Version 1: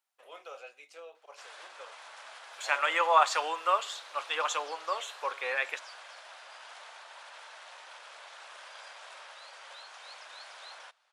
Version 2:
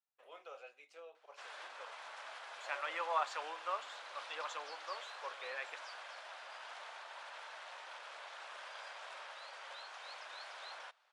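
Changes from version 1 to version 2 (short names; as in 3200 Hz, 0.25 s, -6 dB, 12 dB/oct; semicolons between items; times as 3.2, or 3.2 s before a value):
first voice -5.5 dB; second voice -12.0 dB; master: add LPF 3800 Hz 6 dB/oct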